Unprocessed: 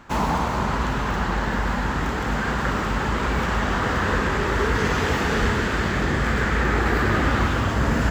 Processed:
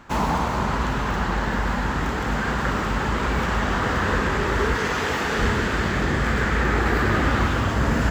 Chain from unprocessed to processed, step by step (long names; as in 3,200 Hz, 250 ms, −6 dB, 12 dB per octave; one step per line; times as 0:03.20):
0:04.74–0:05.39: low-shelf EQ 230 Hz −8.5 dB